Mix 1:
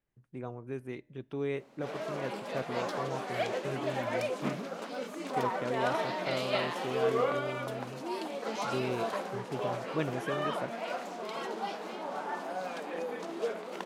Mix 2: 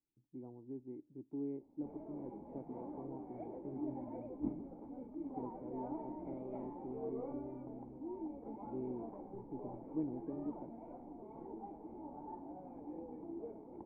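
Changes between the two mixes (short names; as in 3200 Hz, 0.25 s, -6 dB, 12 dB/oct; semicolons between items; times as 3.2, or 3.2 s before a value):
background: remove elliptic high-pass 180 Hz; master: add vocal tract filter u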